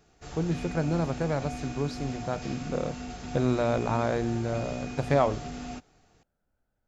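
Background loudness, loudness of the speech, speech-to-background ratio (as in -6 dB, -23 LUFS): -39.0 LUFS, -30.0 LUFS, 9.0 dB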